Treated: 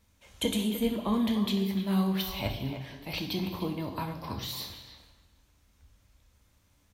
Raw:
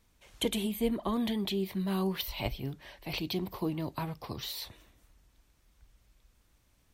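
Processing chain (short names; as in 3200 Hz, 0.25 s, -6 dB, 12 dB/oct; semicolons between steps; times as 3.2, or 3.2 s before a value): speakerphone echo 0.3 s, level -9 dB; on a send at -4 dB: reverb RT60 1.0 s, pre-delay 3 ms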